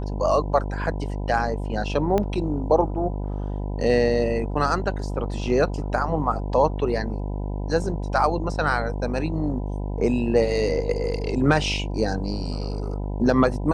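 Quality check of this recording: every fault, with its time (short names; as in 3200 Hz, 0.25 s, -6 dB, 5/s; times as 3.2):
buzz 50 Hz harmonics 20 -28 dBFS
2.18 pop -11 dBFS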